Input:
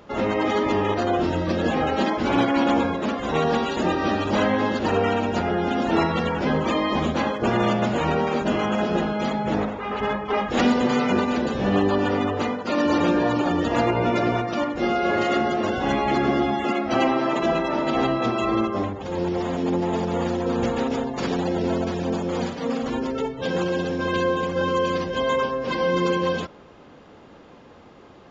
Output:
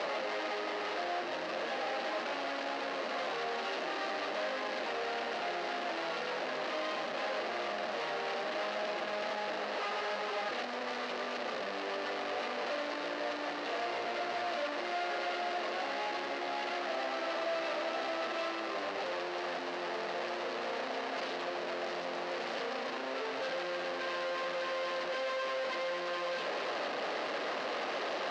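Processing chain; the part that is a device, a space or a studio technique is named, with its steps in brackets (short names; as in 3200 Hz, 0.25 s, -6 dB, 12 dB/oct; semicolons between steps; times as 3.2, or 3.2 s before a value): home computer beeper (infinite clipping; speaker cabinet 600–4200 Hz, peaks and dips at 620 Hz +4 dB, 940 Hz -6 dB, 1400 Hz -4 dB, 2300 Hz -4 dB, 3400 Hz -6 dB); gain -8 dB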